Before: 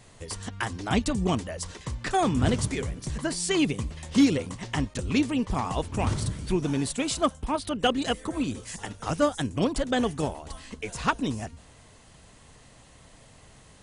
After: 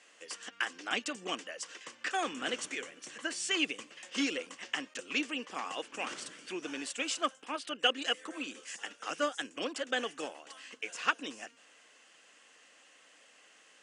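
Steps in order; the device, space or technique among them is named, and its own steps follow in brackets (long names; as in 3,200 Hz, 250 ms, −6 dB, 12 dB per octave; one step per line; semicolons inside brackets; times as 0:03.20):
phone speaker on a table (loudspeaker in its box 360–8,000 Hz, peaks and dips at 400 Hz −9 dB, 650 Hz −7 dB, 930 Hz −9 dB, 1,600 Hz +4 dB, 2,800 Hz +7 dB, 4,000 Hz −6 dB)
0:02.23–0:03.51: notch filter 4,900 Hz, Q 12
level −3.5 dB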